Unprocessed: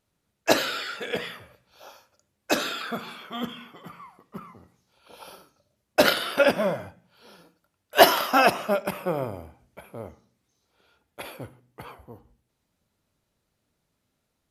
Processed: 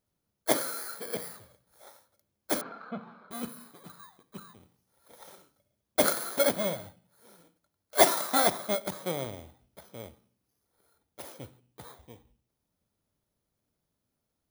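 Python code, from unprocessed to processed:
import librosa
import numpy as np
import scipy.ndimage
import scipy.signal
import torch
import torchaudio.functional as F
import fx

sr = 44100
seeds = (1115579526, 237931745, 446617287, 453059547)

y = fx.bit_reversed(x, sr, seeds[0], block=16)
y = fx.cabinet(y, sr, low_hz=120.0, low_slope=12, high_hz=2500.0, hz=(200.0, 350.0, 1900.0), db=(6, -9, -10), at=(2.61, 3.31))
y = F.gain(torch.from_numpy(y), -5.5).numpy()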